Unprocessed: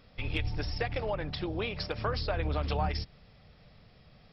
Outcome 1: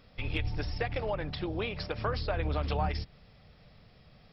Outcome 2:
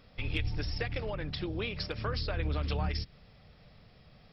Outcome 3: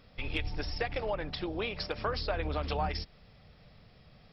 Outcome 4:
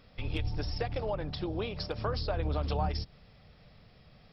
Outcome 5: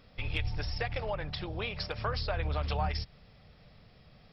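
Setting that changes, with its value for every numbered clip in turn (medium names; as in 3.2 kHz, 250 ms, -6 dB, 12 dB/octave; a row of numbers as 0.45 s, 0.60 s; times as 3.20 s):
dynamic bell, frequency: 6.8 kHz, 770 Hz, 110 Hz, 2.1 kHz, 300 Hz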